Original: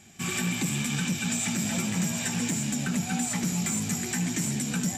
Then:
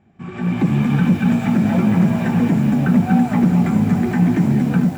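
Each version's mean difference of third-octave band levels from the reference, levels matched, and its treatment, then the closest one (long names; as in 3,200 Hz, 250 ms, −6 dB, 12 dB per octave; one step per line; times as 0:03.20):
10.0 dB: low-pass filter 1,100 Hz 12 dB per octave
automatic gain control gain up to 14.5 dB
feedback echo at a low word length 214 ms, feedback 80%, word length 6 bits, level −13 dB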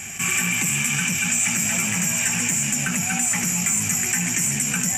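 5.0 dB: drawn EQ curve 110 Hz 0 dB, 310 Hz −6 dB, 2,700 Hz +10 dB, 3,900 Hz −9 dB, 6,200 Hz +9 dB
envelope flattener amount 50%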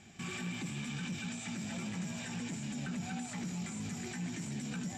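3.5 dB: brickwall limiter −29 dBFS, peak gain reduction 10.5 dB
high-frequency loss of the air 79 metres
level −1.5 dB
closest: third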